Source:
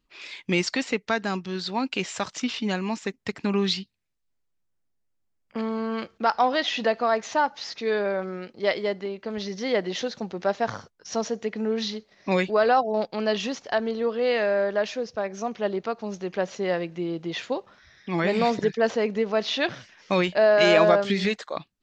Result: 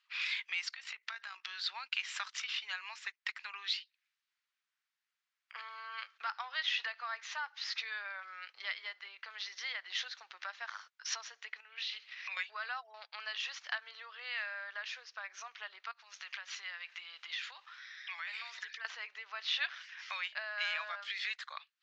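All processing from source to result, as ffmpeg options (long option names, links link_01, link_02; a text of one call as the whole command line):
ffmpeg -i in.wav -filter_complex "[0:a]asettb=1/sr,asplit=3[link_01][link_02][link_03];[link_01]atrim=end=0.694[link_04];[link_02]atrim=start=0.69:end=1.45,asetpts=PTS-STARTPTS,afade=type=in:duration=0.004:curve=qsin,afade=type=out:start_time=0.756:duration=0.004:curve=qsin,acompressor=threshold=-36dB:ratio=20:attack=3.2:release=140:knee=1:detection=peak,tremolo=f=55:d=0.519[link_05];[link_03]atrim=start=1.446[link_06];[link_04][link_05]acrossfade=duration=0.004:curve1=hsin:curve2=qsin[link_07];[link_07][link_06]acrossfade=duration=0.004:curve1=qsin:curve2=hsin,asettb=1/sr,asplit=3[link_08][link_09][link_10];[link_08]atrim=end=11.604[link_11];[link_09]atrim=start=11.6:end=12.37,asetpts=PTS-STARTPTS,afade=type=in:duration=0.004:curve=qsin,afade=type=out:start_time=0.766:duration=0.004:curve=qsin,equalizer=frequency=2700:width_type=o:width=0.7:gain=11.5,acompressor=threshold=-37dB:ratio=12:attack=3.2:release=140:knee=1:detection=peak[link_12];[link_10]atrim=start=12.366[link_13];[link_11][link_12]acrossfade=duration=0.004:curve1=hsin:curve2=qsin[link_14];[link_14][link_13]acrossfade=duration=0.004:curve1=qsin:curve2=hsin,asettb=1/sr,asplit=3[link_15][link_16][link_17];[link_15]atrim=end=15.914[link_18];[link_16]atrim=start=15.91:end=18.85,asetpts=PTS-STARTPTS,afade=type=in:duration=0.004:curve=qsin,afade=type=out:start_time=2.936:duration=0.004:curve=qsin,highpass=frequency=1300:poles=1,acompressor=threshold=-42dB:ratio=6:attack=3.2:release=140:knee=1:detection=peak[link_19];[link_17]atrim=start=18.846[link_20];[link_18][link_19]acrossfade=duration=0.004:curve1=hsin:curve2=qsin[link_21];[link_21][link_20]acrossfade=duration=0.004:curve1=qsin:curve2=hsin,lowpass=4100,acompressor=threshold=-41dB:ratio=3,highpass=frequency=1300:width=0.5412,highpass=frequency=1300:width=1.3066,volume=8dB" out.wav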